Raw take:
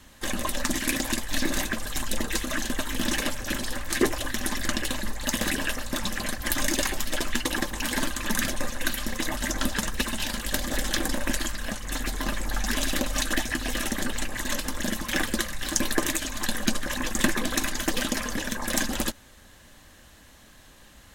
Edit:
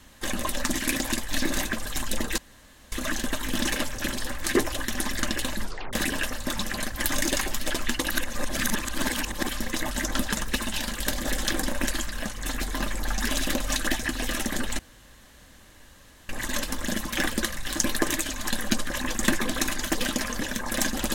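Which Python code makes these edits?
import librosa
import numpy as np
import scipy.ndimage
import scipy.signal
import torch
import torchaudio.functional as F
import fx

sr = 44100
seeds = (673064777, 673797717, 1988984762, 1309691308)

y = fx.edit(x, sr, fx.insert_room_tone(at_s=2.38, length_s=0.54),
    fx.tape_stop(start_s=5.08, length_s=0.31),
    fx.reverse_span(start_s=7.56, length_s=1.39),
    fx.insert_room_tone(at_s=14.25, length_s=1.5), tone=tone)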